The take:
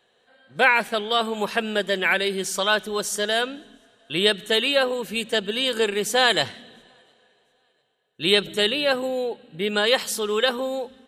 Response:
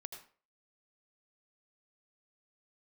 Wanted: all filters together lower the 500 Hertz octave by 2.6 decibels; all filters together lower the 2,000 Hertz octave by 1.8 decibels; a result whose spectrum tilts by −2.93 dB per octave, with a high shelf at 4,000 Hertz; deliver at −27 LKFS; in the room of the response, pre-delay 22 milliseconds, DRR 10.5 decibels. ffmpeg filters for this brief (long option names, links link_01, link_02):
-filter_complex "[0:a]equalizer=frequency=500:width_type=o:gain=-3,equalizer=frequency=2000:width_type=o:gain=-3.5,highshelf=frequency=4000:gain=5.5,asplit=2[link_01][link_02];[1:a]atrim=start_sample=2205,adelay=22[link_03];[link_02][link_03]afir=irnorm=-1:irlink=0,volume=-6.5dB[link_04];[link_01][link_04]amix=inputs=2:normalize=0,volume=-5dB"